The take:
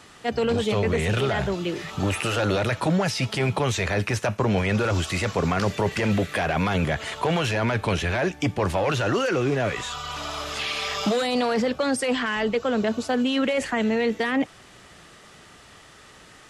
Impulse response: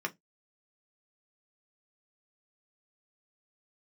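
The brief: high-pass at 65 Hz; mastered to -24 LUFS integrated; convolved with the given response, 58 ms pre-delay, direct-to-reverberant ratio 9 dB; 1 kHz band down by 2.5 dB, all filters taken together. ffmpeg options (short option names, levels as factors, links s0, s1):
-filter_complex "[0:a]highpass=65,equalizer=f=1000:t=o:g=-3.5,asplit=2[s0][s1];[1:a]atrim=start_sample=2205,adelay=58[s2];[s1][s2]afir=irnorm=-1:irlink=0,volume=0.211[s3];[s0][s3]amix=inputs=2:normalize=0,volume=1.06"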